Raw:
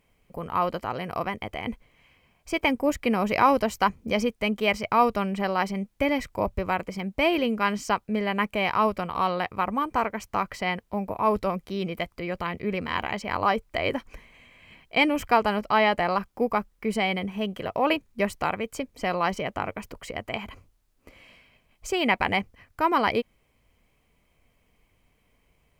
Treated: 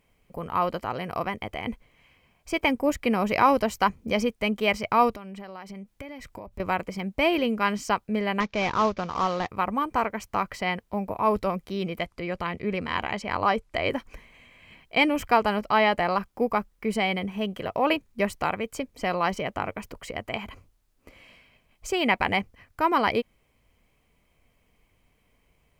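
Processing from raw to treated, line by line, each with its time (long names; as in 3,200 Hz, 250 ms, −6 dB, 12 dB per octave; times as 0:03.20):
0:05.10–0:06.60: downward compressor 8 to 1, threshold −36 dBFS
0:08.40–0:09.48: variable-slope delta modulation 32 kbit/s
0:11.98–0:13.90: low-pass filter 11,000 Hz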